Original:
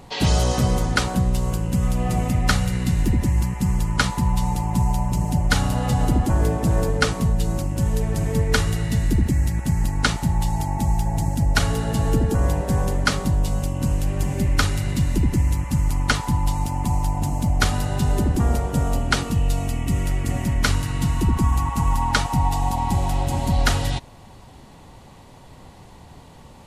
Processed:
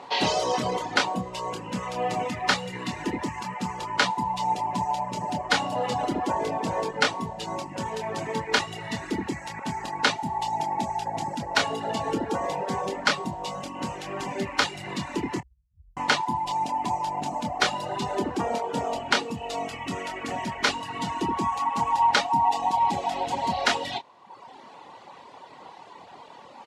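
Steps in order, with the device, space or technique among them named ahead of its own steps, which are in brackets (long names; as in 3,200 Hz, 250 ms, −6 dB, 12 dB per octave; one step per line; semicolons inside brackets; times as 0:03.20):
0:15.40–0:15.97: inverse Chebyshev band-stop filter 290–9,000 Hz, stop band 70 dB
intercom (band-pass filter 400–4,400 Hz; parametric band 960 Hz +5.5 dB 0.5 octaves; soft clipping −8 dBFS, distortion −22 dB; double-tracking delay 26 ms −6 dB)
dynamic equaliser 1,300 Hz, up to −7 dB, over −37 dBFS, Q 1.9
reverb reduction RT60 1 s
level +3.5 dB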